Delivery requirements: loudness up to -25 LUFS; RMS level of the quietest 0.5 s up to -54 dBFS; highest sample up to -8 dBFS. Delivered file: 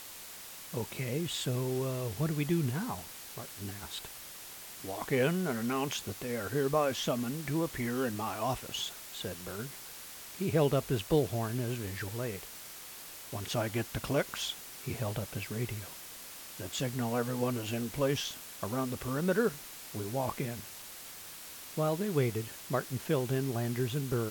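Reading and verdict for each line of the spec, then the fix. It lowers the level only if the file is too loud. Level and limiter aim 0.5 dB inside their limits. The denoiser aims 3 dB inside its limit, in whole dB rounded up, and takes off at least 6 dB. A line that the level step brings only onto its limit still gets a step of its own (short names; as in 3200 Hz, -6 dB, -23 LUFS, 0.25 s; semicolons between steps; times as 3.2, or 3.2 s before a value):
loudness -34.5 LUFS: OK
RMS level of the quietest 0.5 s -47 dBFS: fail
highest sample -16.0 dBFS: OK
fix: denoiser 10 dB, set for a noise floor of -47 dBFS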